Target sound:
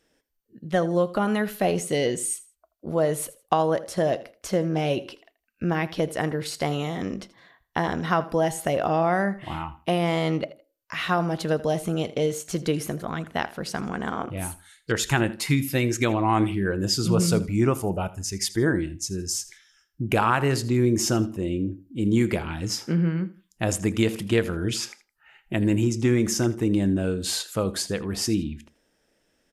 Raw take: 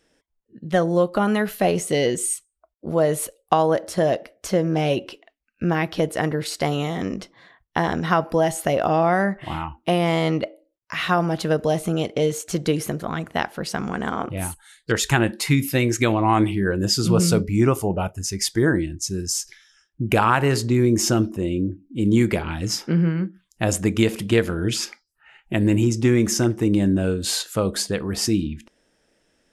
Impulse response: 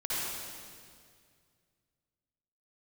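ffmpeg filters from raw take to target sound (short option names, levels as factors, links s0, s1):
-af "aecho=1:1:81|162:0.126|0.034,volume=0.668" -ar 48000 -c:a mp2 -b:a 128k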